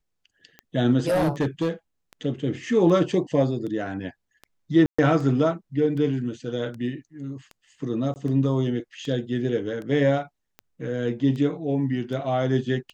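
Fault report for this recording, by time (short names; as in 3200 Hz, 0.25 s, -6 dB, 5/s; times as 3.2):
tick 78 rpm -25 dBFS
0.99–1.69 clipped -18 dBFS
4.86–4.99 gap 0.125 s
8.14–8.16 gap 19 ms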